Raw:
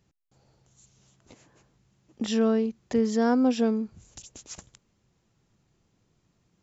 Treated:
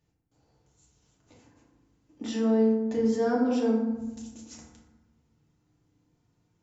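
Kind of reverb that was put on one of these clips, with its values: FDN reverb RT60 1.1 s, low-frequency decay 1.55×, high-frequency decay 0.45×, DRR -4.5 dB; trim -9.5 dB

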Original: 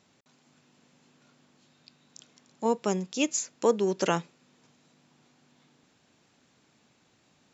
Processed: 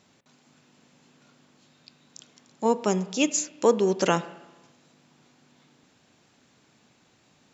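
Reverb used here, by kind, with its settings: spring tank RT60 1.1 s, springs 33/37 ms, chirp 65 ms, DRR 14.5 dB; trim +3.5 dB

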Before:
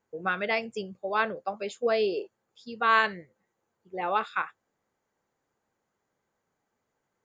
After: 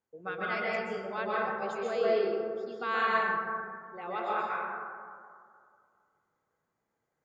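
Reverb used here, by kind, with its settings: plate-style reverb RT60 2.2 s, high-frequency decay 0.3×, pre-delay 115 ms, DRR -6.5 dB; trim -10.5 dB

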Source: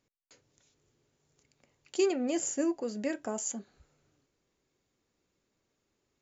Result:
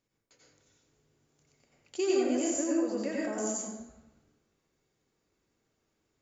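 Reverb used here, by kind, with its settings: plate-style reverb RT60 1 s, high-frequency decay 0.6×, pre-delay 75 ms, DRR -5 dB; trim -4.5 dB

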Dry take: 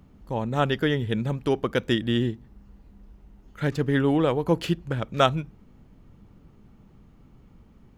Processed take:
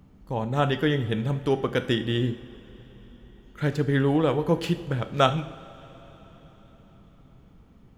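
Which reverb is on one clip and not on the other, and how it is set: two-slope reverb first 0.59 s, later 4.7 s, from -17 dB, DRR 8.5 dB; trim -1 dB

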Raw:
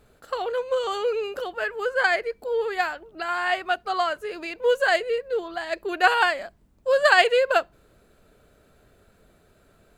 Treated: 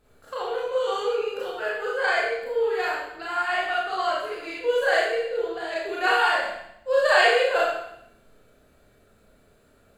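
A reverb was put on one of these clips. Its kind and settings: Schroeder reverb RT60 0.77 s, combs from 27 ms, DRR -7 dB; trim -8 dB

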